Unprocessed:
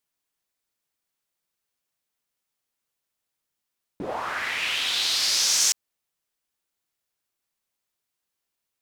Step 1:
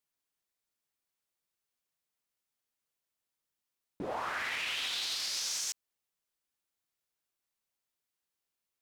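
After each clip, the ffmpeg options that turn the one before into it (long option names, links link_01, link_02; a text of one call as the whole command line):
ffmpeg -i in.wav -af "alimiter=limit=-21dB:level=0:latency=1:release=21,volume=-5.5dB" out.wav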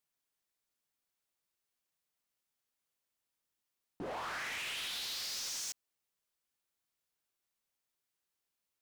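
ffmpeg -i in.wav -af "asoftclip=type=hard:threshold=-38dB" out.wav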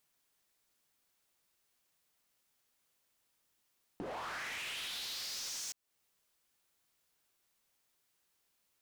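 ffmpeg -i in.wav -af "acompressor=threshold=-56dB:ratio=2.5,volume=9dB" out.wav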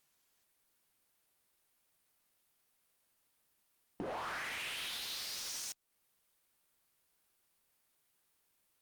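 ffmpeg -i in.wav -af "volume=2dB" -ar 48000 -c:a libopus -b:a 48k out.opus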